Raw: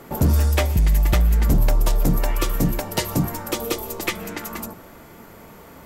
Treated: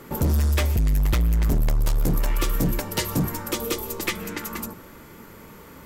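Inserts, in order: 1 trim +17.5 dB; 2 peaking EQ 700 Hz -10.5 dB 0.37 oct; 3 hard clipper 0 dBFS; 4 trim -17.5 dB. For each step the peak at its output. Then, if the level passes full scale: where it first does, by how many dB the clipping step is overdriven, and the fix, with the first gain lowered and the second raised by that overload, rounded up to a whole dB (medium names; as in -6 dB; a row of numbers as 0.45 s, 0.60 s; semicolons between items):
+8.5 dBFS, +8.0 dBFS, 0.0 dBFS, -17.5 dBFS; step 1, 8.0 dB; step 1 +9.5 dB, step 4 -9.5 dB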